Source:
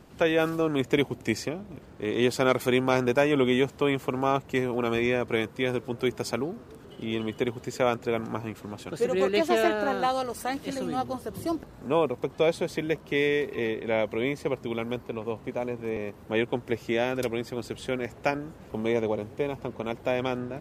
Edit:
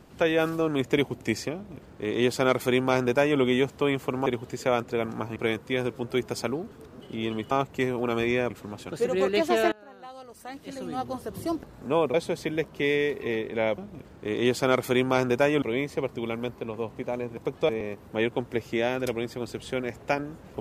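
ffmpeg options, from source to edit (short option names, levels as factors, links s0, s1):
-filter_complex "[0:a]asplit=13[s0][s1][s2][s3][s4][s5][s6][s7][s8][s9][s10][s11][s12];[s0]atrim=end=4.262[s13];[s1]atrim=start=7.398:end=8.502[s14];[s2]atrim=start=5.248:end=6.562[s15];[s3]atrim=start=6.558:end=6.892,asetpts=PTS-STARTPTS,areverse[s16];[s4]atrim=start=6.888:end=7.402[s17];[s5]atrim=start=4.258:end=5.252[s18];[s6]atrim=start=8.498:end=9.72,asetpts=PTS-STARTPTS,afade=t=out:st=1.218:d=0.004:c=hsin:silence=0.0707946[s19];[s7]atrim=start=9.72:end=12.142,asetpts=PTS-STARTPTS,afade=t=in:d=1.46:c=qua:silence=0.0707946[s20];[s8]atrim=start=12.458:end=14.102[s21];[s9]atrim=start=1.548:end=3.392[s22];[s10]atrim=start=14.098:end=15.852[s23];[s11]atrim=start=12.138:end=12.462[s24];[s12]atrim=start=15.848[s25];[s13][s14]acrossfade=d=0.004:c1=hsin:c2=hsin[s26];[s26][s15]acrossfade=d=0.004:c1=hsin:c2=hsin[s27];[s27][s16]acrossfade=d=0.004:c1=hsin:c2=hsin[s28];[s28][s17]acrossfade=d=0.004:c1=hsin:c2=hsin[s29];[s29][s18]acrossfade=d=0.004:c1=hsin:c2=hsin[s30];[s19][s20]concat=n=2:v=0:a=1[s31];[s30][s31]acrossfade=d=0.004:c1=hsin:c2=hsin[s32];[s32][s21]acrossfade=d=0.004:c1=hsin:c2=hsin[s33];[s33][s22]acrossfade=d=0.004:c1=hsin:c2=hsin[s34];[s34][s23]acrossfade=d=0.004:c1=hsin:c2=hsin[s35];[s35][s24]acrossfade=d=0.004:c1=hsin:c2=hsin[s36];[s36][s25]acrossfade=d=0.004:c1=hsin:c2=hsin"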